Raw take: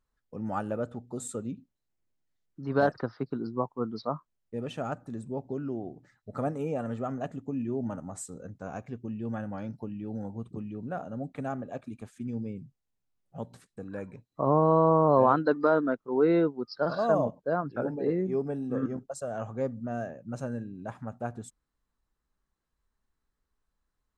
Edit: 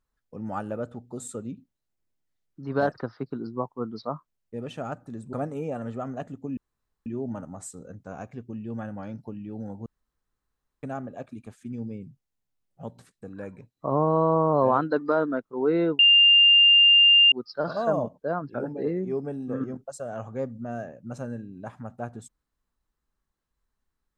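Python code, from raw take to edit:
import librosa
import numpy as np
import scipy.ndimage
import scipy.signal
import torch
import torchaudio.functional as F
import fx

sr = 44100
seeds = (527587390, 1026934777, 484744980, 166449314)

y = fx.edit(x, sr, fx.cut(start_s=5.33, length_s=1.04),
    fx.insert_room_tone(at_s=7.61, length_s=0.49),
    fx.room_tone_fill(start_s=10.41, length_s=0.97),
    fx.insert_tone(at_s=16.54, length_s=1.33, hz=2800.0, db=-12.5), tone=tone)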